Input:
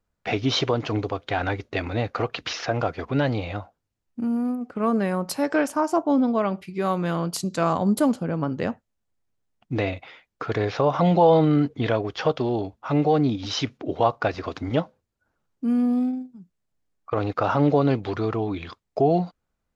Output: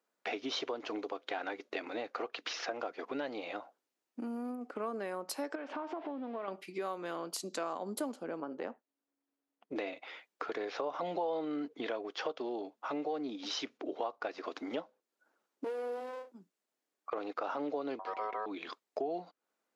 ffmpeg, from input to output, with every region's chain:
-filter_complex "[0:a]asettb=1/sr,asplit=3[a][b][c];[a]atrim=end=5.554[d];[b]atrim=start=5.55:end=6.48,asetpts=PTS-STARTPTS,afade=t=in:d=0.004:c=qsin,afade=t=out:st=0.926:d=0.004:c=qsin,aeval=exprs='val(0)+0.5*0.0224*sgn(val(0))':c=same,lowpass=f=3.3k:w=0.5412,lowpass=f=3.3k:w=1.3066,acompressor=threshold=-28dB:ratio=6:attack=3.2:release=140:knee=1:detection=peak[e];[c]atrim=start=6.476[f];[d][e]acrossfade=d=0.004:c1=hsin:c2=qsin[g];[g][f]acrossfade=d=0.004:c1=qsin:c2=hsin,asettb=1/sr,asplit=3[h][i][j];[h]atrim=end=8.404[k];[i]atrim=start=8.4:end=9.76,asetpts=PTS-STARTPTS,afade=t=in:d=0.004:c=qsin,afade=t=out:st=1.356:d=0.004:c=qsin,highshelf=f=2.9k:g=-10,tremolo=f=280:d=0.519[l];[j]atrim=start=9.756[m];[k][l]acrossfade=d=0.004:c1=hsin:c2=qsin[n];[n][m]acrossfade=d=0.004:c1=qsin:c2=hsin,asettb=1/sr,asplit=3[o][p][q];[o]atrim=end=15.644[r];[p]atrim=start=15.64:end=16.32,asetpts=PTS-STARTPTS,afade=t=in:d=0.004:c=qsin,afade=t=out:st=0.676:d=0.004:c=qsin,asplit=2[s][t];[t]adelay=22,volume=-5dB[u];[s][u]amix=inputs=2:normalize=0,atrim=end_sample=29988,aeval=exprs='abs(val(0))':c=same[v];[q]atrim=start=16.316[w];[r][v]acrossfade=d=0.004:c1=hsin:c2=qsin[x];[x][w]acrossfade=d=0.004:c1=qsin:c2=hsin,asettb=1/sr,asplit=3[y][z][aa];[y]atrim=end=17.994[ab];[z]atrim=start=17.99:end=18.46,asetpts=PTS-STARTPTS,afade=t=in:d=0.004:c=qsin,afade=t=out:st=0.466:d=0.004:c=qsin,bass=f=250:g=6,treble=f=4k:g=-7,aeval=exprs='val(0)*sin(2*PI*860*n/s)':c=same[ac];[aa]atrim=start=18.456[ad];[ab][ac]acrossfade=d=0.004:c1=hsin:c2=qsin[ae];[ae][ad]acrossfade=d=0.004:c1=qsin:c2=hsin,highpass=f=290:w=0.5412,highpass=f=290:w=1.3066,acompressor=threshold=-39dB:ratio=3"

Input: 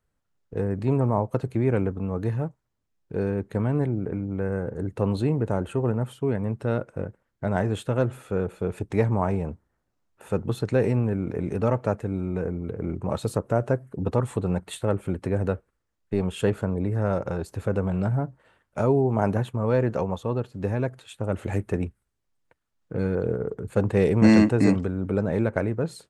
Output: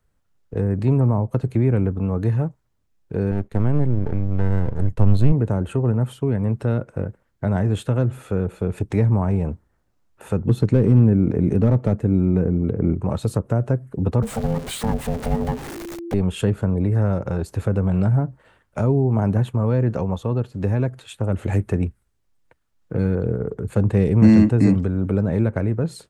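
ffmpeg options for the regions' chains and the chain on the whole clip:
-filter_complex "[0:a]asettb=1/sr,asplit=3[a][b][c];[a]atrim=end=3.314[d];[b]atrim=start=3.31:end=5.32,asetpts=PTS-STARTPTS,afade=t=in:d=0.004:c=qsin,afade=t=out:st=2.006:d=0.004:c=qsin,aeval=exprs='if(lt(val(0),0),0.251*val(0),val(0))':c=same,agate=range=-33dB:threshold=-45dB:ratio=3:release=100:detection=peak,asubboost=boost=4:cutoff=180[e];[c]atrim=start=5.316[f];[d][e]acrossfade=d=0.004:c1=hsin:c2=qsin[g];[g][f]acrossfade=d=0.004:c1=qsin:c2=hsin,asettb=1/sr,asplit=3[h][i][j];[h]atrim=end=10.464[k];[i]atrim=start=10.46:end=12.94,asetpts=PTS-STARTPTS,afade=t=in:d=0.004:c=qsin,afade=t=out:st=2.476:d=0.004:c=qsin,aeval=exprs='clip(val(0),-1,0.158)':c=same,equalizer=f=260:w=0.51:g=6.5[l];[j]atrim=start=12.936[m];[k][l]acrossfade=d=0.004:c1=hsin:c2=qsin[n];[n][m]acrossfade=d=0.004:c1=qsin:c2=hsin,asettb=1/sr,asplit=3[o][p][q];[o]atrim=end=14.224[r];[p]atrim=start=14.22:end=16.14,asetpts=PTS-STARTPTS,afade=t=in:d=0.004:c=qsin,afade=t=out:st=1.916:d=0.004:c=qsin,aeval=exprs='val(0)+0.5*0.0355*sgn(val(0))':c=same,aeval=exprs='val(0)*sin(2*PI*340*n/s)':c=same[s];[q]atrim=start=16.136[t];[r][s]acrossfade=d=0.004:c1=hsin:c2=qsin[u];[u][t]acrossfade=d=0.004:c1=qsin:c2=hsin,lowshelf=f=100:g=5.5,acrossover=split=280[v][w];[w]acompressor=threshold=-32dB:ratio=3[x];[v][x]amix=inputs=2:normalize=0,volume=5dB"

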